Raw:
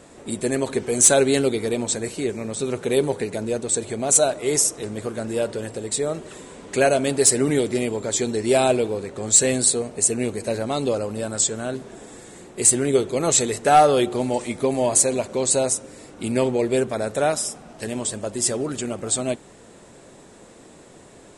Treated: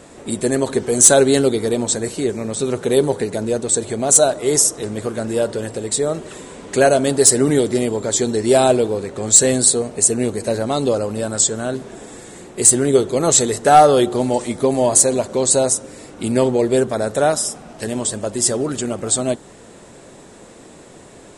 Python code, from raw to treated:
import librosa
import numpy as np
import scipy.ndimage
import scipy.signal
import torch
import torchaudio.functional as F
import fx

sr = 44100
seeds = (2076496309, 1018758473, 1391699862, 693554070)

p1 = fx.dynamic_eq(x, sr, hz=2400.0, q=3.0, threshold_db=-47.0, ratio=4.0, max_db=-8)
p2 = np.clip(10.0 ** (9.0 / 20.0) * p1, -1.0, 1.0) / 10.0 ** (9.0 / 20.0)
p3 = p1 + (p2 * 10.0 ** (-10.0 / 20.0))
y = p3 * 10.0 ** (2.5 / 20.0)